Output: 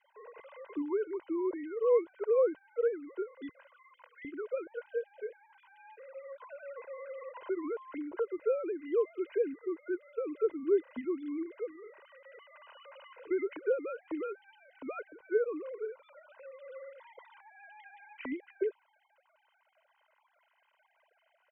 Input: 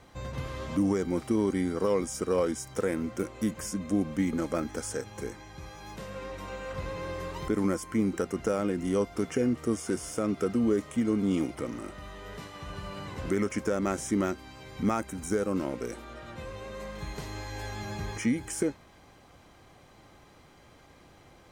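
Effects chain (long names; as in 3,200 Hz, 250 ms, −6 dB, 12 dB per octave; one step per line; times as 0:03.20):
three sine waves on the formant tracks
0:03.49–0:04.25: Chebyshev high-pass filter 490 Hz, order 10
comb filter 2 ms, depth 68%
level −6.5 dB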